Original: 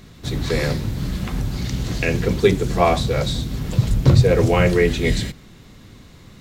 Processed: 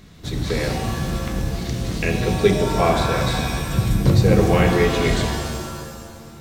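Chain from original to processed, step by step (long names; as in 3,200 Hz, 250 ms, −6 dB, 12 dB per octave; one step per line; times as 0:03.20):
reverb with rising layers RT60 1.7 s, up +7 semitones, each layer −2 dB, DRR 5.5 dB
level −2.5 dB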